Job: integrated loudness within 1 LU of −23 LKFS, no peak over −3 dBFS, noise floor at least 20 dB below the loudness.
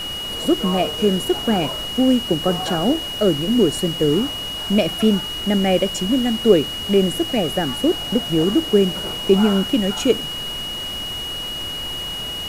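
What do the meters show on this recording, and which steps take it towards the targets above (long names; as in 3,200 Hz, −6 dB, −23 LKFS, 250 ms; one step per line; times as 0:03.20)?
interfering tone 2,900 Hz; level of the tone −26 dBFS; background noise floor −28 dBFS; target noise floor −40 dBFS; integrated loudness −19.5 LKFS; sample peak −1.5 dBFS; target loudness −23.0 LKFS
→ notch filter 2,900 Hz, Q 30
broadband denoise 12 dB, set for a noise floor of −28 dBFS
level −3.5 dB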